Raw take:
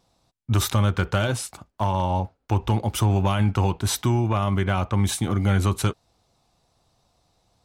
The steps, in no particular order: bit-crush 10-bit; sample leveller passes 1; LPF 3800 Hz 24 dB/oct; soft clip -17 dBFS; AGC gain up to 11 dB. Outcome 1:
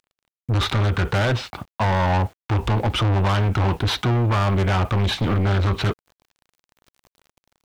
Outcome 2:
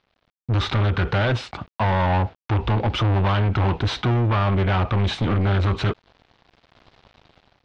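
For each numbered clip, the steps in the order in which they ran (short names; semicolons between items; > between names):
sample leveller > LPF > bit-crush > AGC > soft clip; bit-crush > AGC > soft clip > sample leveller > LPF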